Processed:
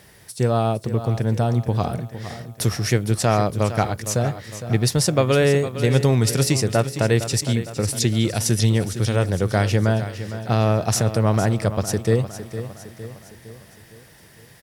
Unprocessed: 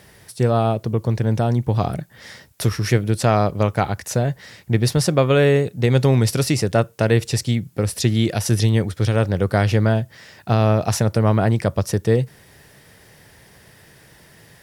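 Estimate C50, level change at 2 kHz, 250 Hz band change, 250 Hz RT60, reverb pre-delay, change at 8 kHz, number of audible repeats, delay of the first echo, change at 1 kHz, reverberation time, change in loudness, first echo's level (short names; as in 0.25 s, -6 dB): none, -1.0 dB, -1.5 dB, none, none, +3.5 dB, 5, 0.459 s, -1.5 dB, none, -1.5 dB, -12.0 dB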